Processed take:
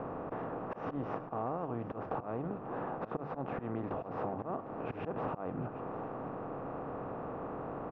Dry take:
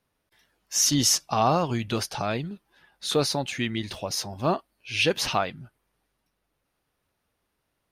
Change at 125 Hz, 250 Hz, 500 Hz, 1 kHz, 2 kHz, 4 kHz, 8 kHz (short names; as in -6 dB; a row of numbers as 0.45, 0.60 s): -10.0 dB, -8.5 dB, -8.0 dB, -9.0 dB, -16.5 dB, under -35 dB, under -40 dB